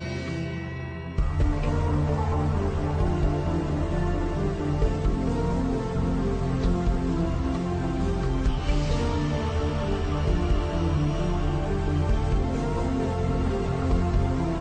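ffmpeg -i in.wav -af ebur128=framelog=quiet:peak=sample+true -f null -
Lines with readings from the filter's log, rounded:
Integrated loudness:
  I:         -26.7 LUFS
  Threshold: -36.7 LUFS
Loudness range:
  LRA:         0.6 LU
  Threshold: -46.6 LUFS
  LRA low:   -26.9 LUFS
  LRA high:  -26.3 LUFS
Sample peak:
  Peak:      -12.0 dBFS
True peak:
  Peak:      -12.0 dBFS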